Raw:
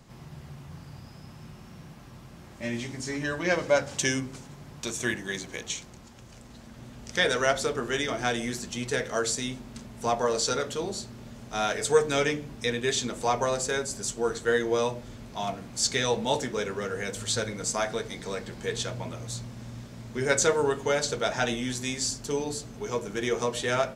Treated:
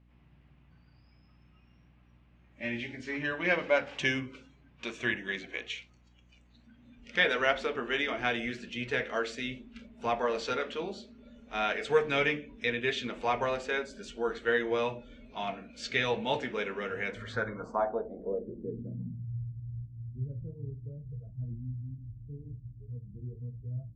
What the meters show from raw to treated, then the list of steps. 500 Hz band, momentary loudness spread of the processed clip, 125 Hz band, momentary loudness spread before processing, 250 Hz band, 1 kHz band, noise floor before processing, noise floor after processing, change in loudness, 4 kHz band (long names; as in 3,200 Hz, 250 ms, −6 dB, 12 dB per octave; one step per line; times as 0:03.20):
−5.5 dB, 15 LU, −2.5 dB, 20 LU, −5.5 dB, −4.0 dB, −48 dBFS, −61 dBFS, −4.5 dB, −6.5 dB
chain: low-pass filter sweep 2,600 Hz → 120 Hz, 0:16.99–0:19.44
noise reduction from a noise print of the clip's start 16 dB
mains hum 60 Hz, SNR 28 dB
level −4.5 dB